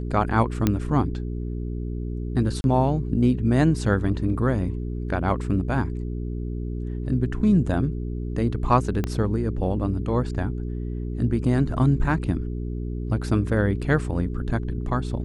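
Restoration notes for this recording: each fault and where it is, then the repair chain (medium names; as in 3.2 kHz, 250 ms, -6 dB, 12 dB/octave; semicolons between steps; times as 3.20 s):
hum 60 Hz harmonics 7 -29 dBFS
0.67 s: pop -7 dBFS
2.61–2.64 s: dropout 31 ms
9.04 s: pop -13 dBFS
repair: de-click; de-hum 60 Hz, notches 7; interpolate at 2.61 s, 31 ms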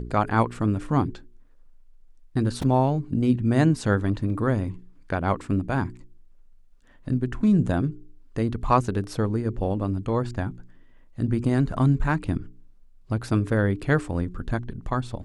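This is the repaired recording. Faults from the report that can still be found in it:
9.04 s: pop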